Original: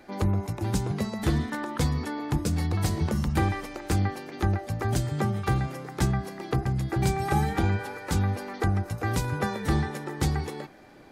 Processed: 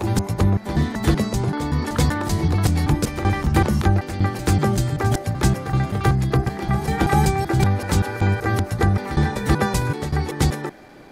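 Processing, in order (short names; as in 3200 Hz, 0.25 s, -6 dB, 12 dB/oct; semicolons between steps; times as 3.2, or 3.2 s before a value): slices in reverse order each 0.191 s, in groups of 4; reverse echo 0.386 s -12 dB; gain +7 dB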